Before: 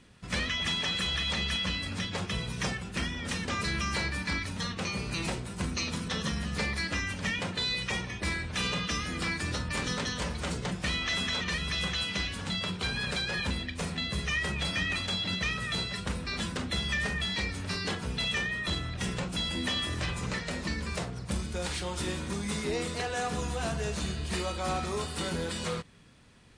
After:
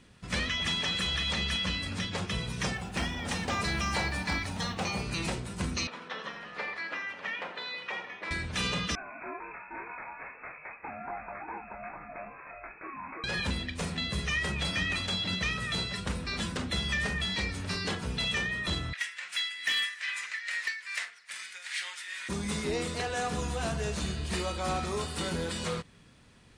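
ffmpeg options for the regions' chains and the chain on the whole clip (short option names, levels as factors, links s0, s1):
-filter_complex "[0:a]asettb=1/sr,asplit=3[s0][s1][s2];[s0]atrim=end=2.754[s3];[s1]atrim=start=2.75:end=5.03,asetpts=PTS-STARTPTS,afade=t=in:d=0.004:c=qsin,afade=t=out:st=2.276:d=0.004:c=qsin,equalizer=f=770:t=o:w=0.57:g=10,bandreject=f=131:t=h:w=4,bandreject=f=262:t=h:w=4,bandreject=f=393:t=h:w=4,bandreject=f=524:t=h:w=4,bandreject=f=655:t=h:w=4,bandreject=f=786:t=h:w=4,bandreject=f=917:t=h:w=4,bandreject=f=1048:t=h:w=4,bandreject=f=1179:t=h:w=4,bandreject=f=1310:t=h:w=4,bandreject=f=1441:t=h:w=4,bandreject=f=1572:t=h:w=4,bandreject=f=1703:t=h:w=4,bandreject=f=1834:t=h:w=4,bandreject=f=1965:t=h:w=4,bandreject=f=2096:t=h:w=4,bandreject=f=2227:t=h:w=4,bandreject=f=2358:t=h:w=4,bandreject=f=2489:t=h:w=4,bandreject=f=2620:t=h:w=4,bandreject=f=2751:t=h:w=4,bandreject=f=2882:t=h:w=4,bandreject=f=3013:t=h:w=4,bandreject=f=3144:t=h:w=4,bandreject=f=3275:t=h:w=4,bandreject=f=3406:t=h:w=4,bandreject=f=3537:t=h:w=4,bandreject=f=3668:t=h:w=4,bandreject=f=3799:t=h:w=4,bandreject=f=3930:t=h:w=4,bandreject=f=4061:t=h:w=4,bandreject=f=4192:t=h:w=4,bandreject=f=4323:t=h:w=4,bandreject=f=4454:t=h:w=4,bandreject=f=4585:t=h:w=4,bandreject=f=4716:t=h:w=4,bandreject=f=4847:t=h:w=4,acrusher=bits=9:mode=log:mix=0:aa=0.000001[s4];[s2]atrim=start=5.026[s5];[s3][s4]acrossfade=d=0.004:c1=hsin:c2=qsin[s6];[s6][s5]acrossfade=d=0.004:c1=qsin:c2=hsin,asettb=1/sr,asplit=3[s7][s8][s9];[s7]atrim=end=5.874[s10];[s8]atrim=start=5.87:end=8.31,asetpts=PTS-STARTPTS,afade=t=in:d=0.004:c=qsin,afade=t=out:st=2.436:d=0.004:c=qsin,highpass=550,lowpass=2200,aecho=1:1:84:0.266,atrim=end_sample=107604[s11];[s9]atrim=start=8.306[s12];[s10][s11]acrossfade=d=0.004:c1=hsin:c2=qsin[s13];[s13][s12]acrossfade=d=0.004:c1=qsin:c2=hsin,asettb=1/sr,asplit=3[s14][s15][s16];[s14]atrim=end=8.954[s17];[s15]atrim=start=8.95:end=13.24,asetpts=PTS-STARTPTS,afade=t=in:d=0.004:c=qsin,afade=t=out:st=4.286:d=0.004:c=qsin,highpass=f=860:p=1,flanger=delay=18:depth=7.4:speed=2.4,lowpass=f=2300:t=q:w=0.5098,lowpass=f=2300:t=q:w=0.6013,lowpass=f=2300:t=q:w=0.9,lowpass=f=2300:t=q:w=2.563,afreqshift=-2700[s18];[s16]atrim=start=13.236[s19];[s17][s18]acrossfade=d=0.004:c1=hsin:c2=qsin[s20];[s20][s19]acrossfade=d=0.004:c1=qsin:c2=hsin,asettb=1/sr,asplit=3[s21][s22][s23];[s21]atrim=end=18.934[s24];[s22]atrim=start=18.93:end=22.29,asetpts=PTS-STARTPTS,afade=t=in:d=0.004:c=qsin,afade=t=out:st=3.356:d=0.004:c=qsin,tremolo=f=2.4:d=0.68,highpass=f=1900:t=q:w=3.8,asoftclip=type=hard:threshold=0.0708[s25];[s23]atrim=start=22.286[s26];[s24][s25]acrossfade=d=0.004:c1=hsin:c2=qsin[s27];[s27][s26]acrossfade=d=0.004:c1=qsin:c2=hsin"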